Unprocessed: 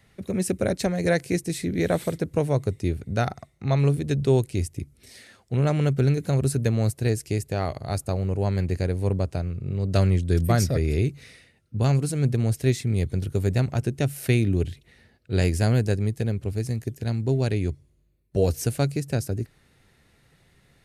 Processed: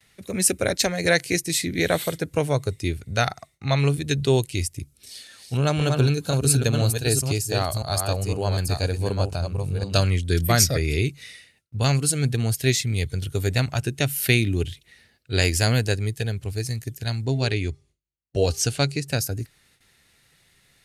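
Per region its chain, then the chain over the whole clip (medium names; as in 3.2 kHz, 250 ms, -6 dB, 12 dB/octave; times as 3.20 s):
4.80–10.08 s: chunks repeated in reverse 504 ms, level -4.5 dB + peaking EQ 2 kHz -8.5 dB 0.33 oct
17.25–19.08 s: low-pass 7.7 kHz + de-hum 399.5 Hz, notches 3
whole clip: gate with hold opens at -51 dBFS; spectral noise reduction 6 dB; tilt shelf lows -7 dB, about 1.5 kHz; trim +6.5 dB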